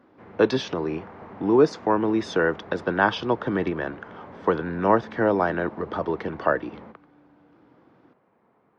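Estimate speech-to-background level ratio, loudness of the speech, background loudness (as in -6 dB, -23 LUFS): 19.5 dB, -24.5 LUFS, -44.0 LUFS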